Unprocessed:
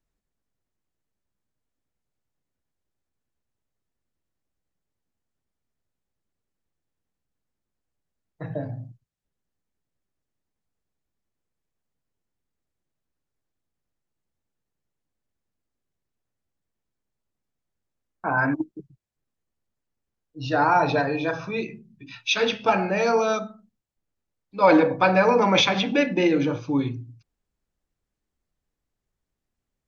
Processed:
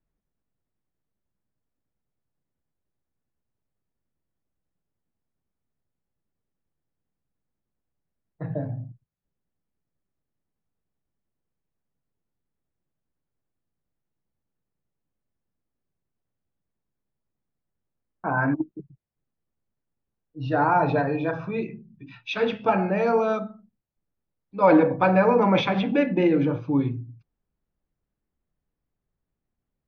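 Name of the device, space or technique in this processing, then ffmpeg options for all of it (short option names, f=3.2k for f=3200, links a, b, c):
phone in a pocket: -af "lowpass=3.4k,equalizer=f=160:t=o:w=0.92:g=3.5,highshelf=f=2.2k:g=-9.5"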